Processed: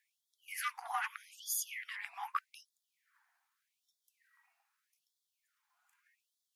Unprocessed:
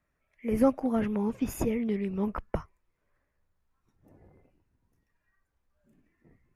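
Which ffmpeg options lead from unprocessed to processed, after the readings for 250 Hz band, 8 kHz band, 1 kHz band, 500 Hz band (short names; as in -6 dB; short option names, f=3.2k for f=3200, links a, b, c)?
under -40 dB, +7.0 dB, -1.5 dB, under -30 dB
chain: -af "aeval=exprs='0.251*(cos(1*acos(clip(val(0)/0.251,-1,1)))-cos(1*PI/2))+0.0251*(cos(5*acos(clip(val(0)/0.251,-1,1)))-cos(5*PI/2))+0.00708*(cos(6*acos(clip(val(0)/0.251,-1,1)))-cos(6*PI/2))':c=same,afreqshift=-150,afftfilt=real='re*gte(b*sr/1024,660*pow(3300/660,0.5+0.5*sin(2*PI*0.82*pts/sr)))':imag='im*gte(b*sr/1024,660*pow(3300/660,0.5+0.5*sin(2*PI*0.82*pts/sr)))':win_size=1024:overlap=0.75,volume=3.5dB"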